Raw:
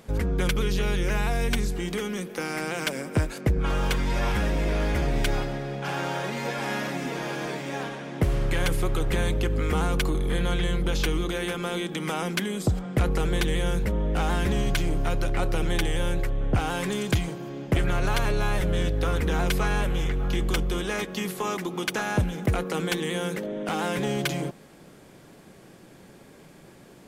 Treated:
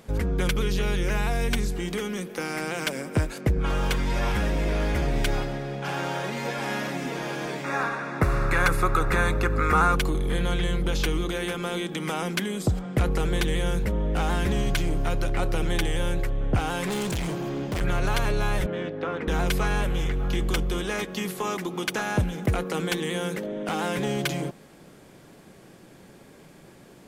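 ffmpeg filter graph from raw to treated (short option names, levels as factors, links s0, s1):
-filter_complex "[0:a]asettb=1/sr,asplit=3[s0][s1][s2];[s0]atrim=end=7.644[s3];[s1]atrim=start=7.64:end=9.96,asetpts=PTS-STARTPTS,afade=t=in:d=0.004:c=qsin,afade=t=out:st=2.316:d=0.004:c=qsin,asuperstop=centerf=3100:order=4:qfactor=5.7,equalizer=f=1300:w=1.5:g=14.5[s4];[s2]atrim=start=9.956[s5];[s3][s4]acrossfade=d=0.004:c1=hsin:c2=qsin[s6];[s6][s5]acrossfade=d=0.004:c1=qsin:c2=hsin,asettb=1/sr,asplit=3[s7][s8][s9];[s7]atrim=end=16.874[s10];[s8]atrim=start=16.87:end=17.81,asetpts=PTS-STARTPTS,afade=t=in:d=0.004:c=qsin,afade=t=out:st=0.936:d=0.004:c=qsin,acontrast=74,asoftclip=type=hard:threshold=0.0501[s11];[s9]atrim=start=17.806[s12];[s10][s11]acrossfade=d=0.004:c1=hsin:c2=qsin[s13];[s13][s12]acrossfade=d=0.004:c1=qsin:c2=hsin,asettb=1/sr,asplit=3[s14][s15][s16];[s14]atrim=end=18.664[s17];[s15]atrim=start=18.66:end=19.28,asetpts=PTS-STARTPTS,afade=t=in:d=0.004:c=qsin,afade=t=out:st=0.616:d=0.004:c=qsin,highpass=110,lowpass=5800,acrossover=split=160 2700:gain=0.1 1 0.178[s18][s19][s20];[s18][s19][s20]amix=inputs=3:normalize=0[s21];[s16]atrim=start=19.276[s22];[s17][s21]acrossfade=d=0.004:c1=hsin:c2=qsin[s23];[s23][s22]acrossfade=d=0.004:c1=qsin:c2=hsin"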